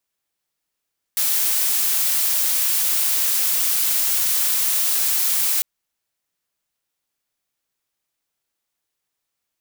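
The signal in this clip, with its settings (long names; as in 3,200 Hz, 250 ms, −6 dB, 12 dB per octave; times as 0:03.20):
noise blue, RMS −19.5 dBFS 4.45 s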